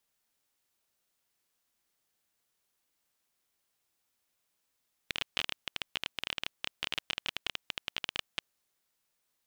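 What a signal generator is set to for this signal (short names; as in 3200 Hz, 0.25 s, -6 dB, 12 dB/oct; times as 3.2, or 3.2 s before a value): random clicks 19/s -14.5 dBFS 3.34 s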